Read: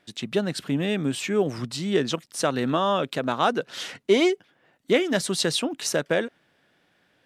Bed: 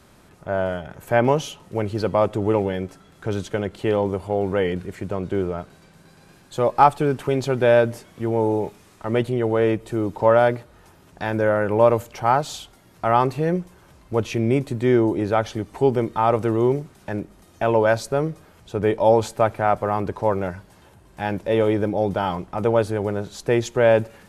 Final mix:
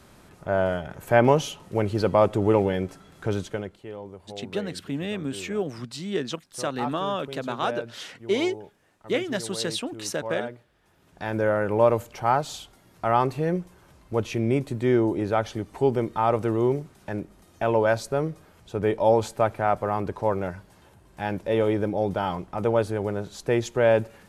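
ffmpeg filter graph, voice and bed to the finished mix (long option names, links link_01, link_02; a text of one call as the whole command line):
ffmpeg -i stem1.wav -i stem2.wav -filter_complex "[0:a]adelay=4200,volume=-5dB[link_01];[1:a]volume=14dB,afade=type=out:start_time=3.23:duration=0.58:silence=0.133352,afade=type=in:start_time=10.82:duration=0.56:silence=0.199526[link_02];[link_01][link_02]amix=inputs=2:normalize=0" out.wav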